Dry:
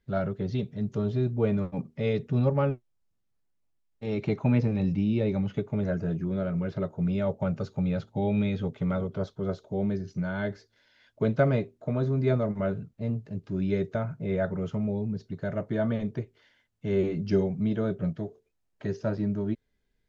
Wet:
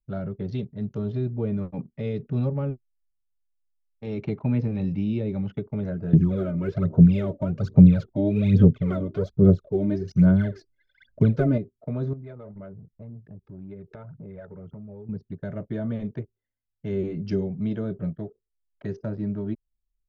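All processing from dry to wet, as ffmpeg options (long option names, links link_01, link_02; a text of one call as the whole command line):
ffmpeg -i in.wav -filter_complex "[0:a]asettb=1/sr,asplit=3[link_01][link_02][link_03];[link_01]atrim=end=6.134[link_04];[link_02]atrim=start=6.13:end=11.58,asetpts=PTS-STARTPTS,afade=type=in:duration=0.004:curve=qsin,afade=type=out:start_time=5.446:duration=0.004:curve=qsin,bandreject=frequency=850:width=7.3,acontrast=60,aphaser=in_gain=1:out_gain=1:delay=3.4:decay=0.73:speed=1.2:type=sinusoidal[link_05];[link_03]atrim=start=11.576[link_06];[link_04][link_05]acrossfade=duration=0.004:curve1=hsin:curve2=qsin[link_07];[link_07][link_06]acrossfade=duration=0.004:curve1=qsin:curve2=hsin,asettb=1/sr,asplit=3[link_08][link_09][link_10];[link_08]atrim=end=12.134[link_11];[link_09]atrim=start=12.13:end=15.09,asetpts=PTS-STARTPTS,afade=type=in:duration=0.004:curve=qsin,afade=type=out:start_time=2.956:duration=0.004:curve=qsin,aphaser=in_gain=1:out_gain=1:delay=2.4:decay=0.49:speed=1.9:type=sinusoidal,acompressor=threshold=-39dB:ratio=5:attack=3.2:release=140:knee=1:detection=peak[link_12];[link_10]atrim=start=15.086[link_13];[link_11][link_12]acrossfade=duration=0.004:curve1=hsin:curve2=qsin[link_14];[link_14][link_13]acrossfade=duration=0.004:curve1=qsin:curve2=hsin,anlmdn=0.0398,acrossover=split=410[link_15][link_16];[link_16]acompressor=threshold=-40dB:ratio=3[link_17];[link_15][link_17]amix=inputs=2:normalize=0" out.wav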